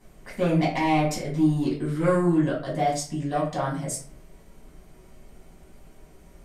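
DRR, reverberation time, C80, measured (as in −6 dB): −6.0 dB, 0.45 s, 10.5 dB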